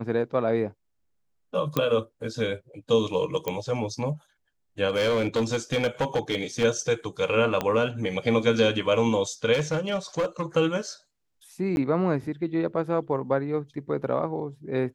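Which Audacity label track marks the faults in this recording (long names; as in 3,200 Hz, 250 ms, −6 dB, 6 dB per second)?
1.770000	1.770000	click −10 dBFS
3.480000	3.480000	click −13 dBFS
4.890000	6.650000	clipping −19.5 dBFS
7.610000	7.610000	click −12 dBFS
9.530000	10.430000	clipping −20.5 dBFS
11.760000	11.770000	drop-out 11 ms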